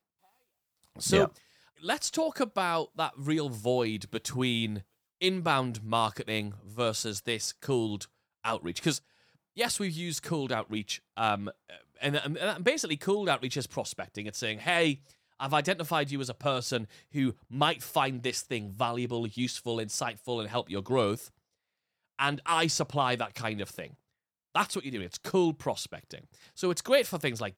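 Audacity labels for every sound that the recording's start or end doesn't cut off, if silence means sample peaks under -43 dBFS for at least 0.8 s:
0.960000	21.270000	sound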